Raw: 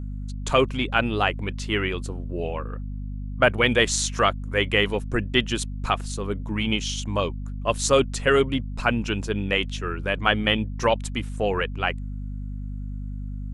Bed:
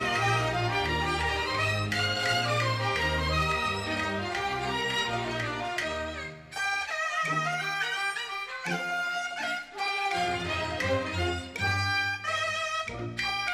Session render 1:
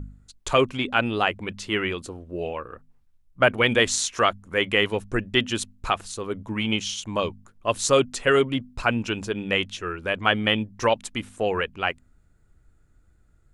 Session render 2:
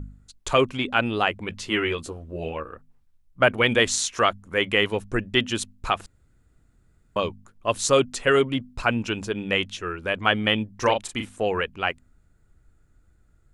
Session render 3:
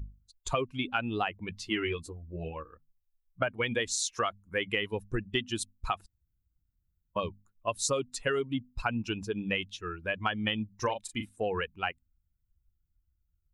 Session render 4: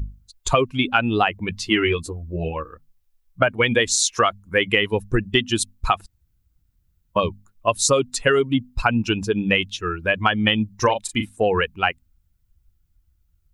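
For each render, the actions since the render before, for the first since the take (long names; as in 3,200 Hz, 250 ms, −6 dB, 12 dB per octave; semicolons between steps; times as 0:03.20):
hum removal 50 Hz, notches 5
0:01.49–0:02.70: double-tracking delay 13 ms −4 dB; 0:06.06–0:07.16: fill with room tone; 0:10.82–0:11.26: double-tracking delay 38 ms −6 dB
spectral dynamics exaggerated over time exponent 1.5; downward compressor 12 to 1, threshold −26 dBFS, peak gain reduction 12.5 dB
level +12 dB; brickwall limiter −3 dBFS, peak gain reduction 1.5 dB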